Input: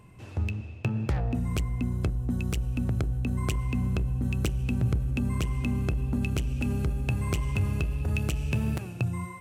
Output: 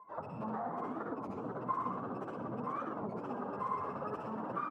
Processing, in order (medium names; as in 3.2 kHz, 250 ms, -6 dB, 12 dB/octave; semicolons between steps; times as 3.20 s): expander on every frequency bin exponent 2; frequency-shifting echo 126 ms, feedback 56%, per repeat +46 Hz, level -10 dB; overdrive pedal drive 22 dB, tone 1.3 kHz, clips at -18 dBFS; one-sided clip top -37.5 dBFS, bottom -22 dBFS; high-pass 120 Hz 24 dB/octave; tone controls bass -15 dB, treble -8 dB; band-stop 360 Hz, Q 12; on a send at -5 dB: reverberation RT60 1.1 s, pre-delay 120 ms; on the sum: compression 10:1, threshold -50 dBFS, peak gain reduction 18.5 dB; plain phase-vocoder stretch 0.5×; resonant high shelf 1.7 kHz -13 dB, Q 3; warped record 33 1/3 rpm, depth 250 cents; trim +15.5 dB